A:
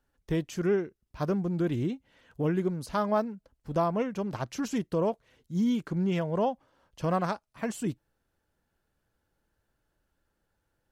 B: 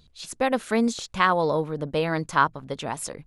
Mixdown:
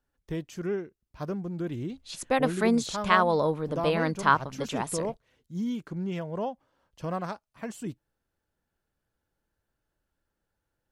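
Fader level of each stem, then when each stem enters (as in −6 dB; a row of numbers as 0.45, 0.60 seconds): −4.5, −1.5 decibels; 0.00, 1.90 seconds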